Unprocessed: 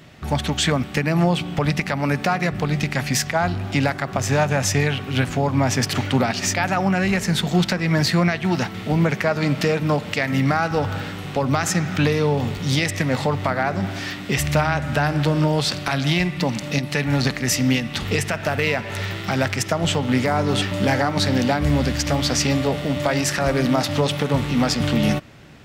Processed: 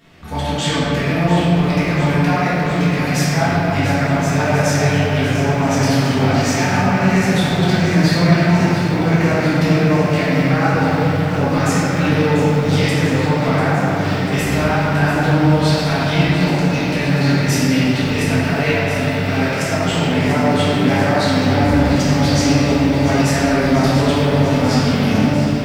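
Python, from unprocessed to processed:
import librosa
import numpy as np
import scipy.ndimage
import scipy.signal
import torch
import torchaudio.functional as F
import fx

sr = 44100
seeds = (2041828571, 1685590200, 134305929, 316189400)

y = fx.room_shoebox(x, sr, seeds[0], volume_m3=200.0, walls='hard', distance_m=1.7)
y = fx.echo_crushed(y, sr, ms=693, feedback_pct=80, bits=6, wet_db=-11)
y = y * librosa.db_to_amplitude(-8.0)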